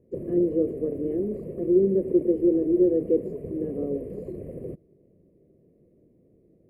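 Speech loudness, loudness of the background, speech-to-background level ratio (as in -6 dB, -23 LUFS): -25.0 LUFS, -36.5 LUFS, 11.5 dB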